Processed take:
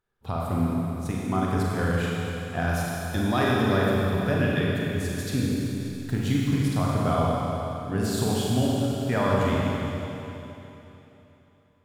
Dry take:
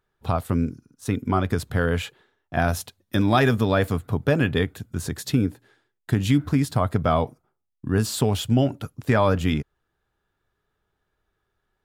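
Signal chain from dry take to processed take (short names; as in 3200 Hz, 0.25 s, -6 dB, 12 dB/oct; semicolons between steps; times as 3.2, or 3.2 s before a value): 5.41–6.42 level-crossing sampler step -44 dBFS; Schroeder reverb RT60 3.3 s, combs from 32 ms, DRR -4.5 dB; gain -7.5 dB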